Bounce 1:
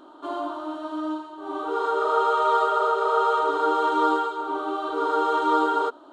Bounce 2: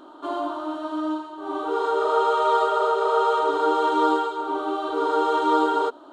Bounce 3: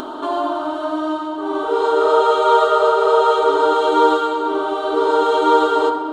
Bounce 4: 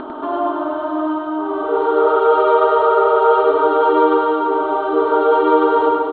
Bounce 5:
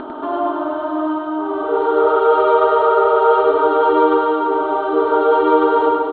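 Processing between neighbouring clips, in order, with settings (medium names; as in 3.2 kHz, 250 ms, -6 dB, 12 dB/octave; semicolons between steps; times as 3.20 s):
dynamic bell 1.3 kHz, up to -5 dB, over -35 dBFS, Q 2.5; trim +2.5 dB
simulated room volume 3000 m³, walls mixed, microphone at 1.5 m; upward compressor, threshold -25 dBFS; trim +5.5 dB
Bessel low-pass 1.9 kHz, order 8; reverse bouncing-ball echo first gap 100 ms, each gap 1.4×, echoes 5
band-stop 1.1 kHz, Q 23; Chebyshev shaper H 4 -40 dB, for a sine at -1 dBFS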